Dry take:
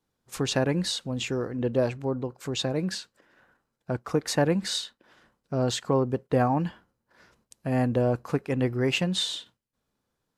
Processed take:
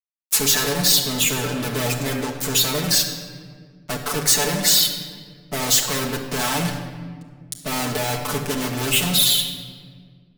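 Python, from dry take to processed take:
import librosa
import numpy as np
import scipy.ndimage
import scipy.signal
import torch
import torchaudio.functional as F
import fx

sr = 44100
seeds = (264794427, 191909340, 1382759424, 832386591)

p1 = fx.spec_quant(x, sr, step_db=30)
p2 = fx.level_steps(p1, sr, step_db=14)
p3 = p1 + (p2 * 10.0 ** (3.0 / 20.0))
p4 = scipy.signal.sosfilt(scipy.signal.butter(2, 100.0, 'highpass', fs=sr, output='sos'), p3)
p5 = fx.fuzz(p4, sr, gain_db=36.0, gate_db=-42.0)
p6 = librosa.effects.preemphasis(p5, coef=0.8, zi=[0.0])
p7 = p6 + 0.71 * np.pad(p6, (int(6.9 * sr / 1000.0), 0))[:len(p6)]
y = fx.room_shoebox(p7, sr, seeds[0], volume_m3=2400.0, walls='mixed', distance_m=1.5)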